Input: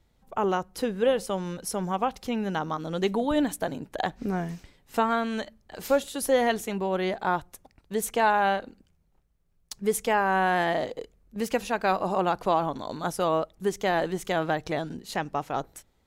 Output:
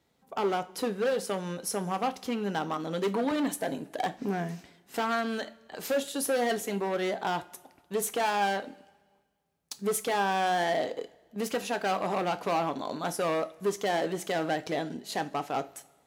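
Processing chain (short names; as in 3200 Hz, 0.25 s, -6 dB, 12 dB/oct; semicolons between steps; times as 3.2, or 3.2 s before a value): overloaded stage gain 24.5 dB; HPF 170 Hz 12 dB/oct; two-slope reverb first 0.29 s, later 1.5 s, from -18 dB, DRR 9.5 dB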